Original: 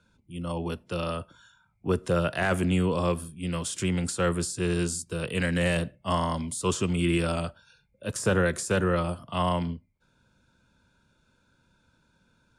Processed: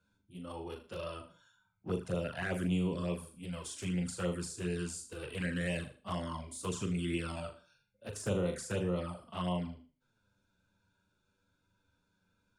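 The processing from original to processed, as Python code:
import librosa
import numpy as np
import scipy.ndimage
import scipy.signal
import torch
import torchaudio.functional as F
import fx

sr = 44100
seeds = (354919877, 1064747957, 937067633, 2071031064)

y = fx.room_flutter(x, sr, wall_m=6.7, rt60_s=0.38)
y = fx.env_flanger(y, sr, rest_ms=10.7, full_db=-19.5)
y = y * librosa.db_to_amplitude(-8.5)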